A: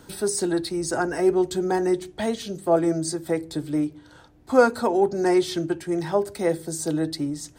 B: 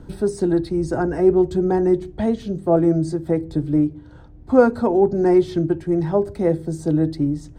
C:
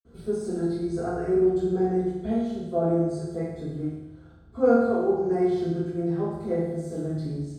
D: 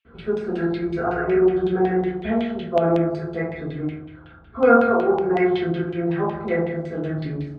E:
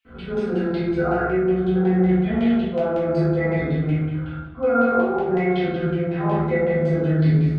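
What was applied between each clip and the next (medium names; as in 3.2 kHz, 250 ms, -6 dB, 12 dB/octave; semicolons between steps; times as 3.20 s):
tilt EQ -4 dB/octave; trim -1 dB
reverberation RT60 1.1 s, pre-delay 47 ms
peaking EQ 2.7 kHz +14.5 dB 1.7 oct; LFO low-pass saw down 5.4 Hz 880–3100 Hz; trim +2.5 dB
reverse; compression 6:1, threshold -27 dBFS, peak gain reduction 17 dB; reverse; simulated room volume 140 m³, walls mixed, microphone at 2 m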